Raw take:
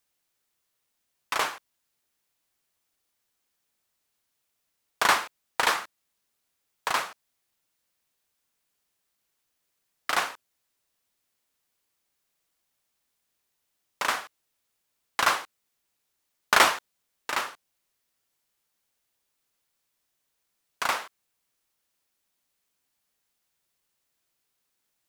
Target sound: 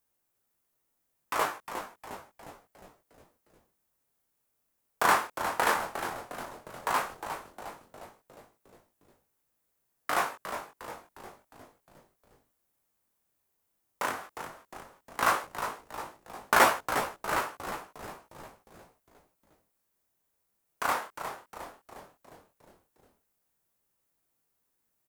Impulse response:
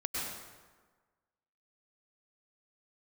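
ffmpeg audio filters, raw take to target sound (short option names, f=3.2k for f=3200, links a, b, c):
-filter_complex "[0:a]equalizer=f=3.8k:t=o:w=2.4:g=-11.5,asettb=1/sr,asplit=3[a][b][c];[a]atrim=end=14.084[d];[b]atrim=start=14.08:end=15.21,asetpts=PTS-STARTPTS,afade=t=in:d=0.004:c=qsin,afade=t=out:st=1.126:d=0.004:c=qsin,acrossover=split=350[e][f];[f]acompressor=threshold=-34dB:ratio=6[g];[e][g]amix=inputs=2:normalize=0[h];[c]atrim=start=15.206[i];[d][h]acrossfade=d=0.004:c1=hsin:c2=qsin[j];[j][i]acrossfade=d=0.004:c1=qsin:c2=hsin,flanger=delay=17:depth=8:speed=0.12,asplit=7[k][l][m][n][o][p][q];[l]adelay=357,afreqshift=-110,volume=-9dB[r];[m]adelay=714,afreqshift=-220,volume=-14.4dB[s];[n]adelay=1071,afreqshift=-330,volume=-19.7dB[t];[o]adelay=1428,afreqshift=-440,volume=-25.1dB[u];[p]adelay=1785,afreqshift=-550,volume=-30.4dB[v];[q]adelay=2142,afreqshift=-660,volume=-35.8dB[w];[k][r][s][t][u][v][w]amix=inputs=7:normalize=0,volume=5.5dB"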